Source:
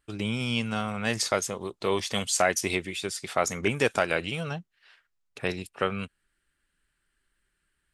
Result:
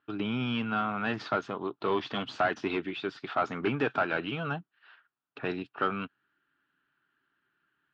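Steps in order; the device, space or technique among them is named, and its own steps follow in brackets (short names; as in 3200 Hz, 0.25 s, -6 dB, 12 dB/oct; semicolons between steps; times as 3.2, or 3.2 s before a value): overdrive pedal into a guitar cabinet (overdrive pedal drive 19 dB, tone 1200 Hz, clips at -7.5 dBFS; speaker cabinet 110–3800 Hz, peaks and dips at 130 Hz +8 dB, 280 Hz +8 dB, 530 Hz -9 dB, 1400 Hz +5 dB, 2100 Hz -8 dB); gain -6 dB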